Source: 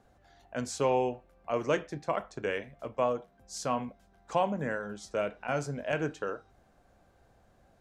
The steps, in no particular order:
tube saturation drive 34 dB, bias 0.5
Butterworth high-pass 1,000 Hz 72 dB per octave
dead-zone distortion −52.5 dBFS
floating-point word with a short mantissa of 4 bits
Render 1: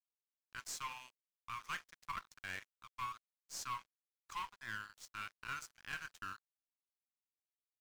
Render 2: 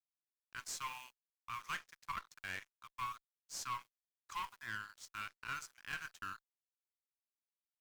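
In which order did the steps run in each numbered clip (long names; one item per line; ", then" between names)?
Butterworth high-pass, then tube saturation, then floating-point word with a short mantissa, then dead-zone distortion
floating-point word with a short mantissa, then Butterworth high-pass, then dead-zone distortion, then tube saturation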